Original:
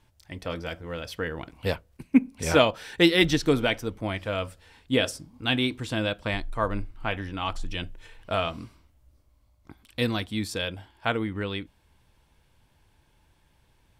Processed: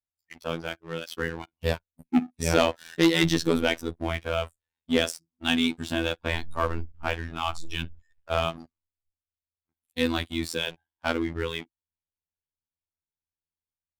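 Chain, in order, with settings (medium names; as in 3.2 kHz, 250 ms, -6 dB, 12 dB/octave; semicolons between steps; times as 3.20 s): spectral noise reduction 24 dB; waveshaping leveller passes 3; robot voice 82.7 Hz; trim -7.5 dB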